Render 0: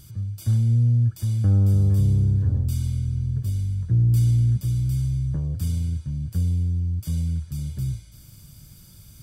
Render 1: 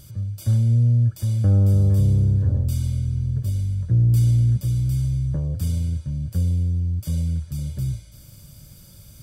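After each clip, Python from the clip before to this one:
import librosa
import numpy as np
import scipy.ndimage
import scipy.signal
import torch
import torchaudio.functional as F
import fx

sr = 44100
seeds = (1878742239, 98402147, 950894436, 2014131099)

y = fx.peak_eq(x, sr, hz=560.0, db=9.5, octaves=0.4)
y = y * librosa.db_to_amplitude(1.5)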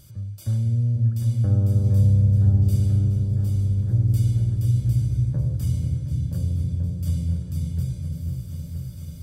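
y = fx.echo_opening(x, sr, ms=486, hz=400, octaves=2, feedback_pct=70, wet_db=-3)
y = y * librosa.db_to_amplitude(-4.5)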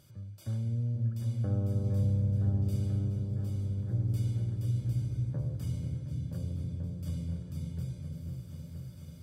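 y = fx.highpass(x, sr, hz=250.0, slope=6)
y = fx.high_shelf(y, sr, hz=4200.0, db=-10.5)
y = y * librosa.db_to_amplitude(-3.0)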